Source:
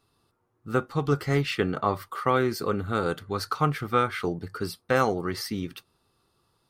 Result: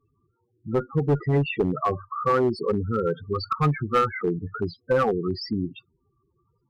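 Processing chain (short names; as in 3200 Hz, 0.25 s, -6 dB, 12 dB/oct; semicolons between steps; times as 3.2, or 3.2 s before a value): loudest bins only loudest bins 8; 2.97–5.44 low shelf 86 Hz +2 dB; one-sided clip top -22 dBFS; gain +5 dB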